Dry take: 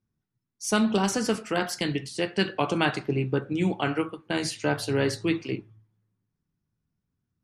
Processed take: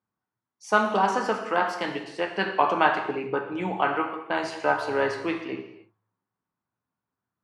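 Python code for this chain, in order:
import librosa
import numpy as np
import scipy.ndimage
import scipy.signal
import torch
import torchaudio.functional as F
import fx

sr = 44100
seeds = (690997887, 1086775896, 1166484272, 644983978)

y = fx.bandpass_q(x, sr, hz=970.0, q=1.6)
y = fx.rev_gated(y, sr, seeds[0], gate_ms=330, shape='falling', drr_db=4.5)
y = F.gain(torch.from_numpy(y), 8.5).numpy()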